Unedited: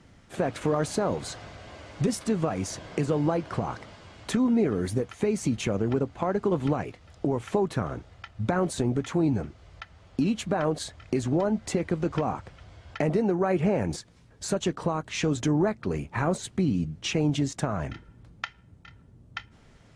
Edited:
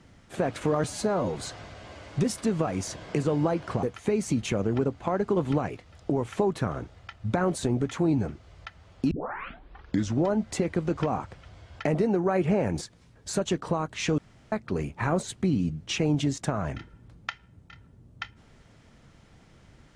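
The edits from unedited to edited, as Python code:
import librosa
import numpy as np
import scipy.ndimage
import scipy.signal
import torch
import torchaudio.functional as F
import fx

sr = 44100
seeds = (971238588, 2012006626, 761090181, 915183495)

y = fx.edit(x, sr, fx.stretch_span(start_s=0.84, length_s=0.34, factor=1.5),
    fx.cut(start_s=3.66, length_s=1.32),
    fx.tape_start(start_s=10.26, length_s=1.11),
    fx.room_tone_fill(start_s=15.33, length_s=0.34), tone=tone)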